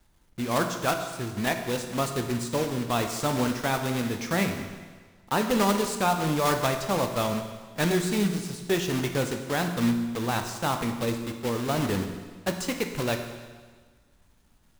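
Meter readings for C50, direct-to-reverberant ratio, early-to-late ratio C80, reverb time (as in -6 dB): 7.0 dB, 5.5 dB, 8.5 dB, 1.5 s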